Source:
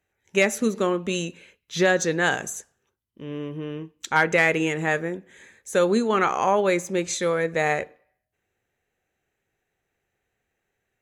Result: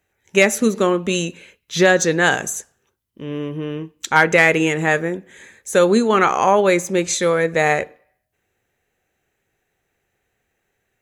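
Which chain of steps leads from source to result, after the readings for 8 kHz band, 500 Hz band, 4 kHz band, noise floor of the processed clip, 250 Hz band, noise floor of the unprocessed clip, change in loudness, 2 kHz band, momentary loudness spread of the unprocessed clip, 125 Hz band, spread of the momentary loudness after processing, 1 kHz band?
+7.5 dB, +6.0 dB, +6.5 dB, -73 dBFS, +6.0 dB, -79 dBFS, +6.0 dB, +6.0 dB, 14 LU, +6.0 dB, 14 LU, +6.0 dB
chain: high shelf 8700 Hz +3.5 dB; gain +6 dB

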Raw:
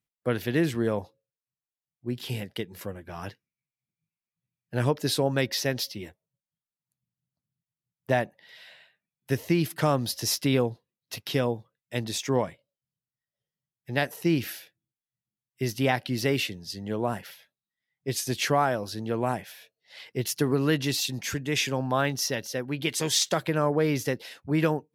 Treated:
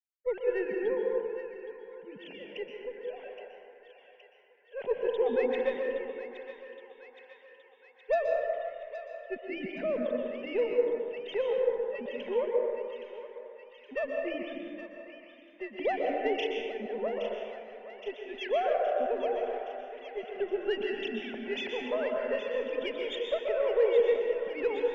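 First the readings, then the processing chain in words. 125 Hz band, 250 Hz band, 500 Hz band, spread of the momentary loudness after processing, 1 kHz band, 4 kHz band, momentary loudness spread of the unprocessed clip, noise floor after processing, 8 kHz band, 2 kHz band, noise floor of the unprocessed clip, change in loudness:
under -30 dB, -11.0 dB, +1.5 dB, 17 LU, -5.0 dB, -12.0 dB, 13 LU, -58 dBFS, under -30 dB, -6.0 dB, under -85 dBFS, -4.0 dB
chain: sine-wave speech; fixed phaser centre 320 Hz, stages 6; added harmonics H 6 -28 dB, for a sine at -14.5 dBFS; on a send: thinning echo 0.819 s, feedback 69%, high-pass 880 Hz, level -10 dB; on the sum: plate-style reverb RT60 2.2 s, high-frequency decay 0.35×, pre-delay 0.11 s, DRR 0 dB; gain -3.5 dB

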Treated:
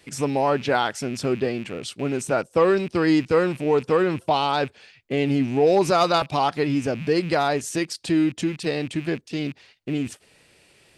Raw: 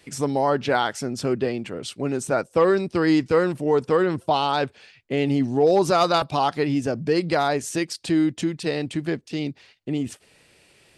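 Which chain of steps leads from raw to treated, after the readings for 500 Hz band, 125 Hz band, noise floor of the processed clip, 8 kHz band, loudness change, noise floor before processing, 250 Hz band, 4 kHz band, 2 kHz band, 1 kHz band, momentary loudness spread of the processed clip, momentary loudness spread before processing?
0.0 dB, 0.0 dB, -58 dBFS, 0.0 dB, 0.0 dB, -58 dBFS, 0.0 dB, 0.0 dB, +0.5 dB, 0.0 dB, 10 LU, 10 LU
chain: rattling part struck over -36 dBFS, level -30 dBFS

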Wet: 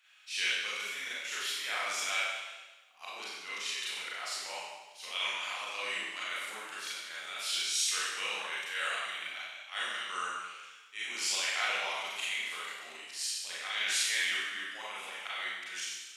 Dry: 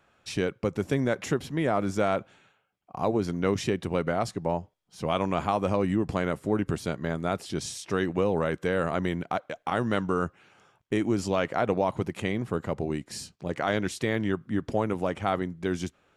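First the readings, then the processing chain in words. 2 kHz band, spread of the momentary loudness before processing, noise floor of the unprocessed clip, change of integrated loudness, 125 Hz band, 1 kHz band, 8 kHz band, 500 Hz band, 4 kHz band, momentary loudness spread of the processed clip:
+2.5 dB, 6 LU, -69 dBFS, -5.0 dB, under -40 dB, -9.0 dB, +7.0 dB, -21.5 dB, +8.0 dB, 12 LU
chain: resonant high-pass 2600 Hz, resonance Q 1.6; auto swell 0.135 s; Schroeder reverb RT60 1.2 s, combs from 30 ms, DRR -8.5 dB

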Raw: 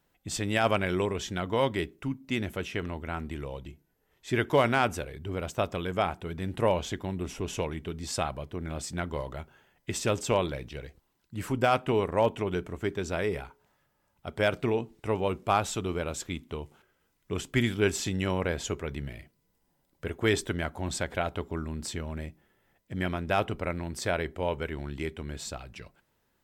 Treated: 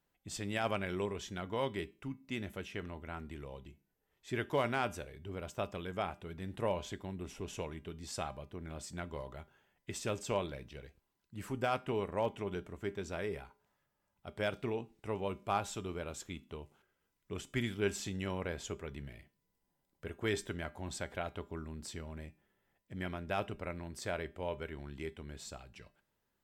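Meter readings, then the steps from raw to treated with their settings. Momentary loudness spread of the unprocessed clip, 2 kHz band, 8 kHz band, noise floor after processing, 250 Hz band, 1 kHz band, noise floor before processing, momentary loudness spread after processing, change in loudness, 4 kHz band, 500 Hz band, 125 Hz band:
14 LU, -9.0 dB, -9.0 dB, -82 dBFS, -9.0 dB, -9.0 dB, -73 dBFS, 14 LU, -9.0 dB, -9.0 dB, -9.0 dB, -9.5 dB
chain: resonator 200 Hz, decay 0.34 s, harmonics all, mix 50%; gain -4 dB

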